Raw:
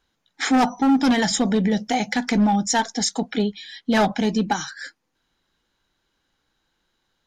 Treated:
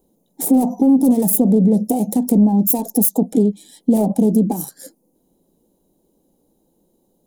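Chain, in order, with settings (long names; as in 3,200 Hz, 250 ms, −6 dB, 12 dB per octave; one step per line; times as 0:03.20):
phase distortion by the signal itself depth 0.17 ms
in parallel at +2.5 dB: brickwall limiter −18.5 dBFS, peak gain reduction 7.5 dB
on the sum: downward compressor 3 to 1, threshold −23 dBFS, peak gain reduction 9.5 dB
drawn EQ curve 120 Hz 0 dB, 180 Hz +13 dB, 550 Hz +11 dB, 940 Hz −3 dB, 1,500 Hz −26 dB, 5,500 Hz −9 dB, 10,000 Hz +14 dB
level −2.5 dB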